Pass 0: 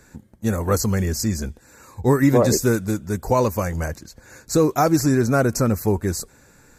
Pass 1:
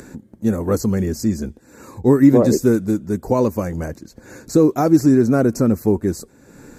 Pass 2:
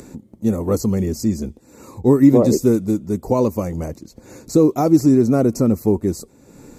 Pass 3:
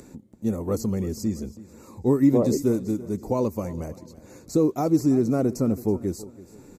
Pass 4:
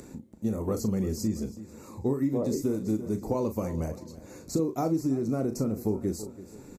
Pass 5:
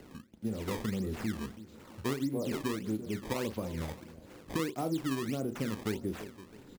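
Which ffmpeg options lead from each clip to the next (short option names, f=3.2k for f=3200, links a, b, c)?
-af "equalizer=f=280:w=0.63:g=12.5,acompressor=mode=upward:threshold=-24dB:ratio=2.5,volume=-6dB"
-af "equalizer=f=1.6k:t=o:w=0.33:g=-13"
-af "aecho=1:1:329|658|987:0.126|0.0428|0.0146,volume=-7dB"
-filter_complex "[0:a]acompressor=threshold=-24dB:ratio=10,asplit=2[a][b];[b]adelay=37,volume=-9dB[c];[a][c]amix=inputs=2:normalize=0"
-filter_complex "[0:a]acrossover=split=260[a][b];[b]crystalizer=i=0.5:c=0[c];[a][c]amix=inputs=2:normalize=0,acrusher=samples=18:mix=1:aa=0.000001:lfo=1:lforange=28.8:lforate=1.6,volume=-6dB"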